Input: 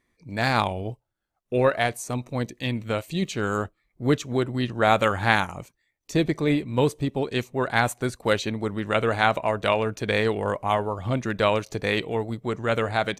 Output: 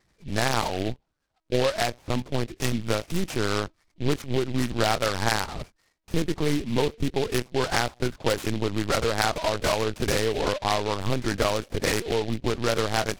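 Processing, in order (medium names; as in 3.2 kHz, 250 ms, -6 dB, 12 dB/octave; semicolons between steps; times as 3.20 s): compression 4:1, threshold -26 dBFS, peak gain reduction 11 dB; LPC vocoder at 8 kHz pitch kept; delay time shaken by noise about 2.8 kHz, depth 0.081 ms; trim +5 dB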